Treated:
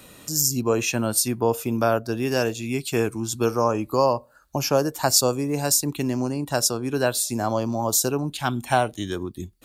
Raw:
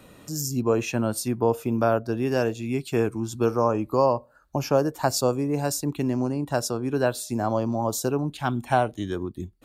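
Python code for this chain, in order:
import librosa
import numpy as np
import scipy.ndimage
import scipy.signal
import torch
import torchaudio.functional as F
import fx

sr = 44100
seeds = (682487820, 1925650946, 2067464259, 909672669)

y = fx.high_shelf(x, sr, hz=2500.0, db=11.0)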